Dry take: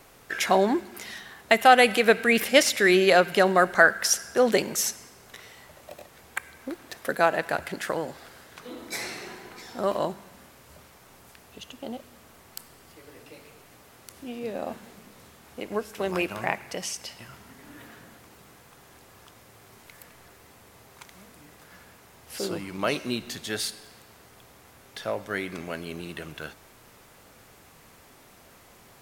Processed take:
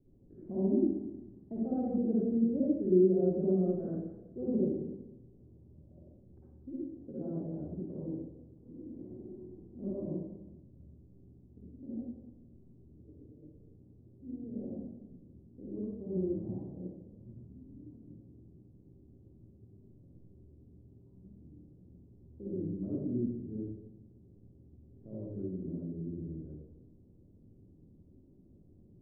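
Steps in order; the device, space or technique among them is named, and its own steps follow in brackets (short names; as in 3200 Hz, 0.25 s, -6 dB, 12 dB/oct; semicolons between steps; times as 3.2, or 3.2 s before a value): next room (LPF 320 Hz 24 dB/oct; reverb RT60 1.0 s, pre-delay 47 ms, DRR -7.5 dB); 11.96–13.22 dynamic EQ 1000 Hz, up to +4 dB, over -57 dBFS, Q 1.3; gain -8.5 dB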